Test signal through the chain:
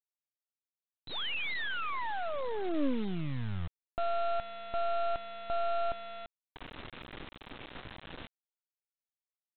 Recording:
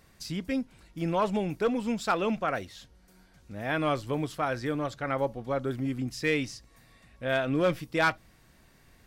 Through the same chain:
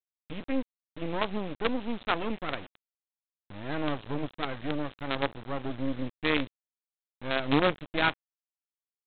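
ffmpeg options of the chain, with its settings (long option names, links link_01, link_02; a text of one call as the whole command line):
ffmpeg -i in.wav -af "equalizer=frequency=280:width_type=o:width=0.46:gain=7.5,aresample=8000,acrusher=bits=4:dc=4:mix=0:aa=0.000001,aresample=44100,volume=-2dB" out.wav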